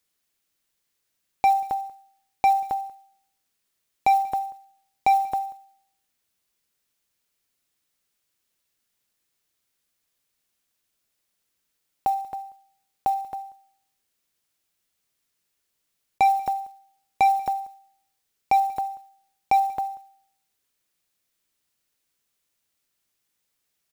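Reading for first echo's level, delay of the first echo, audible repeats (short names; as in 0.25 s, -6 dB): -24.0 dB, 0.187 s, 1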